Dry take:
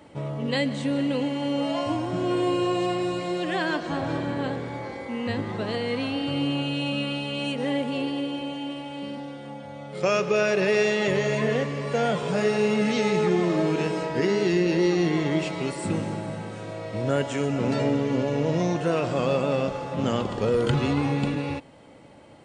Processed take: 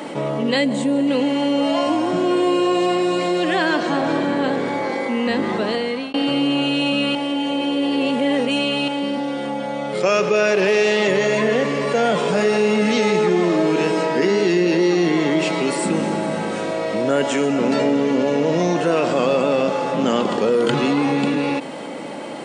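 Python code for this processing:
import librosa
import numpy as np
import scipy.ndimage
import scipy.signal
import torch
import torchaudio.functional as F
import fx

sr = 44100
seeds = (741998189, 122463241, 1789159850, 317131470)

y = fx.spec_box(x, sr, start_s=0.65, length_s=0.42, low_hz=1100.0, high_hz=6500.0, gain_db=-7)
y = fx.doppler_dist(y, sr, depth_ms=0.1, at=(10.51, 11.08))
y = fx.edit(y, sr, fx.fade_out_span(start_s=5.54, length_s=0.6),
    fx.reverse_span(start_s=7.15, length_s=1.73), tone=tone)
y = scipy.signal.sosfilt(scipy.signal.butter(4, 190.0, 'highpass', fs=sr, output='sos'), y)
y = fx.env_flatten(y, sr, amount_pct=50)
y = F.gain(torch.from_numpy(y), 4.5).numpy()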